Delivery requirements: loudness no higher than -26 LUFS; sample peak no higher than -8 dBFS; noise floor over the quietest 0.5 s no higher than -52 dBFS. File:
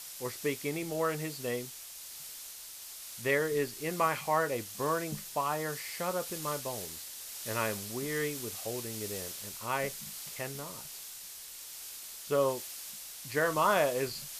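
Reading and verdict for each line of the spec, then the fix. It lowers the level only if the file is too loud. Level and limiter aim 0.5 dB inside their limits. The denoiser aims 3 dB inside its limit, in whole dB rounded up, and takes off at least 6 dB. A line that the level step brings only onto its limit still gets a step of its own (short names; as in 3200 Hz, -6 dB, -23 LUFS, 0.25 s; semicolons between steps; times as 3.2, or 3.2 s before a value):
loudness -34.0 LUFS: OK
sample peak -14.0 dBFS: OK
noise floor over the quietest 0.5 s -46 dBFS: fail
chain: denoiser 9 dB, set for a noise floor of -46 dBFS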